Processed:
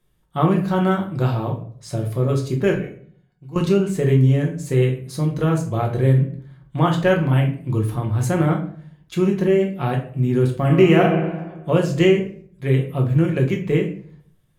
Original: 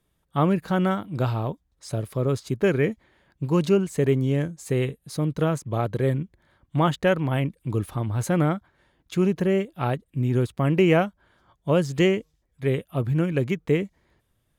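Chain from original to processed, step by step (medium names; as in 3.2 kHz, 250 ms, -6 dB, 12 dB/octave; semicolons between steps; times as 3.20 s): 2.74–3.56 s: feedback comb 730 Hz, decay 0.15 s, harmonics all, mix 90%; 10.53–11.02 s: reverb throw, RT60 1.3 s, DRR 3 dB; reverberation RT60 0.55 s, pre-delay 6 ms, DRR 0 dB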